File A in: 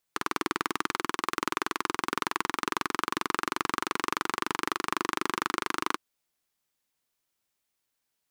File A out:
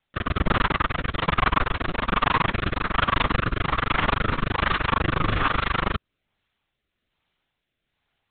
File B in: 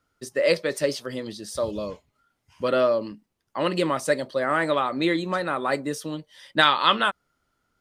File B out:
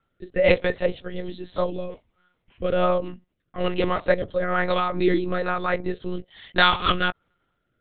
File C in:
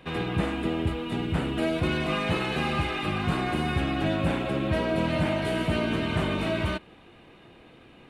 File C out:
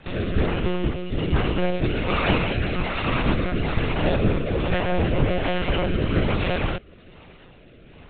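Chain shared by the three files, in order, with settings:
monotone LPC vocoder at 8 kHz 180 Hz; rotary speaker horn 1.2 Hz; match loudness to -24 LUFS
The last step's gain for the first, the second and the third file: +12.5, +4.0, +6.5 dB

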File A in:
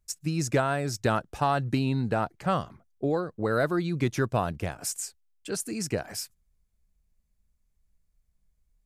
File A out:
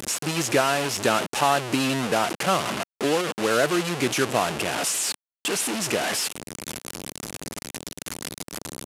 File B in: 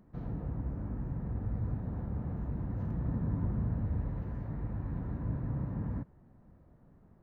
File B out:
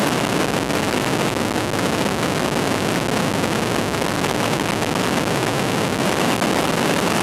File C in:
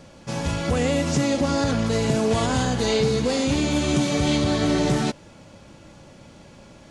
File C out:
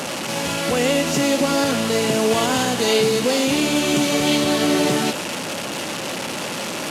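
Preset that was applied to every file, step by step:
delta modulation 64 kbps, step -24 dBFS; HPF 230 Hz 12 dB/oct; dynamic EQ 2800 Hz, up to +5 dB, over -48 dBFS, Q 4.1; normalise peaks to -6 dBFS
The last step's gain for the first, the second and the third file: +4.5, +15.5, +4.0 dB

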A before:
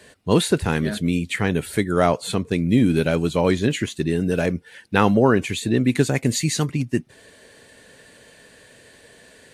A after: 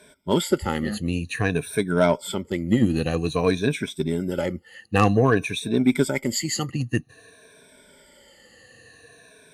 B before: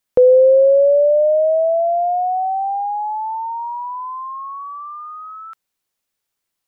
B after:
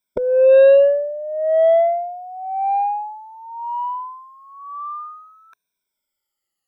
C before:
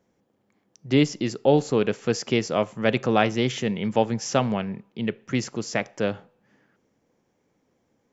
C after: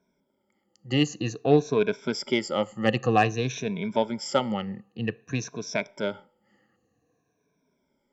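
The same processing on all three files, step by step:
moving spectral ripple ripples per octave 1.6, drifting -0.52 Hz, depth 20 dB; added harmonics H 2 -33 dB, 3 -16 dB, 5 -16 dB, 7 -22 dB, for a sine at 3 dBFS; gain -4.5 dB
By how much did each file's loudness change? -2.5, -1.0, -2.5 LU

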